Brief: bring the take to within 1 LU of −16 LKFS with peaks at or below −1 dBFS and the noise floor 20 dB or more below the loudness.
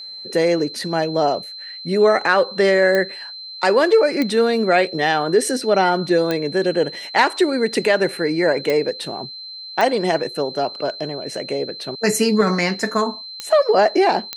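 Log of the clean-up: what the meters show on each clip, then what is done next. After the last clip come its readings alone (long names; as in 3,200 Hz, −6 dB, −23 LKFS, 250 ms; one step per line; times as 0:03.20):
number of clicks 7; interfering tone 4,100 Hz; level of the tone −32 dBFS; integrated loudness −19.0 LKFS; sample peak −1.5 dBFS; target loudness −16.0 LKFS
→ click removal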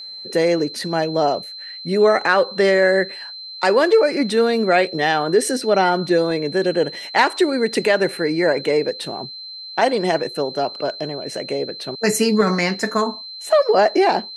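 number of clicks 0; interfering tone 4,100 Hz; level of the tone −32 dBFS
→ notch filter 4,100 Hz, Q 30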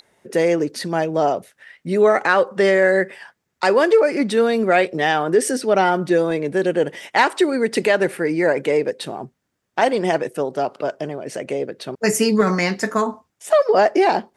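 interfering tone none found; integrated loudness −19.0 LKFS; sample peak −2.0 dBFS; target loudness −16.0 LKFS
→ level +3 dB
brickwall limiter −1 dBFS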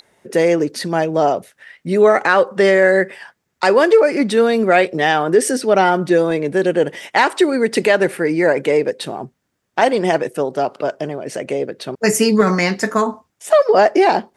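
integrated loudness −16.0 LKFS; sample peak −1.0 dBFS; background noise floor −72 dBFS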